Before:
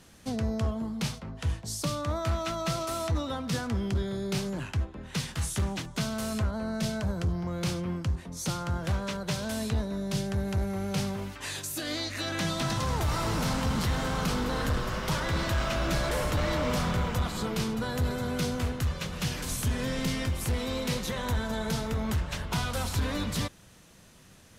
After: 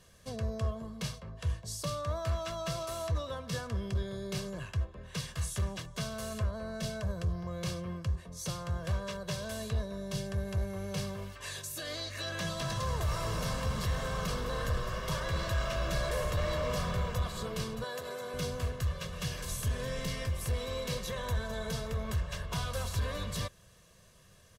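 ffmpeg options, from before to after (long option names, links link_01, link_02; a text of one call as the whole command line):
ffmpeg -i in.wav -filter_complex "[0:a]asettb=1/sr,asplit=3[link_01][link_02][link_03];[link_01]atrim=end=17.844[link_04];[link_02]atrim=start=17.84:end=18.34,asetpts=PTS-STARTPTS,afade=type=in:duration=0.004:curve=qsin,afade=type=out:start_time=0.496:duration=0.004:curve=qsin,highpass=340[link_05];[link_03]atrim=start=18.336[link_06];[link_04][link_05]acrossfade=duration=0.004:curve1=hsin:curve2=qsin[link_07];[link_07][link_06]acrossfade=duration=0.004:curve1=qsin:curve2=hsin,bandreject=frequency=2300:width=22,aecho=1:1:1.8:0.67,volume=-6.5dB" out.wav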